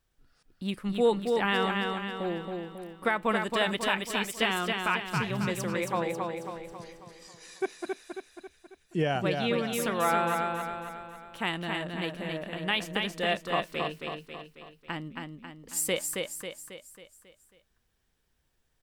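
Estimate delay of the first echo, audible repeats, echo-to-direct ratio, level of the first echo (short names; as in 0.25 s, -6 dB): 0.272 s, 6, -3.0 dB, -4.0 dB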